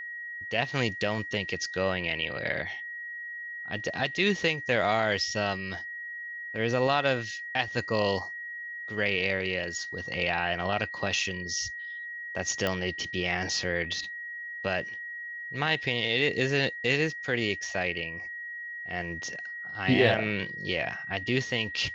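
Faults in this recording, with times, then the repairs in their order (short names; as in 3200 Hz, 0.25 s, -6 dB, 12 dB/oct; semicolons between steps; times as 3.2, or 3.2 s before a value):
tone 1900 Hz -36 dBFS
12.67 pop -14 dBFS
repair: de-click; notch 1900 Hz, Q 30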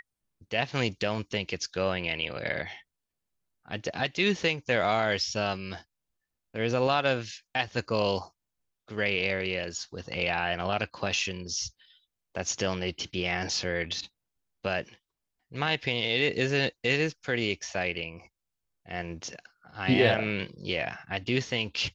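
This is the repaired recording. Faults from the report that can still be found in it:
none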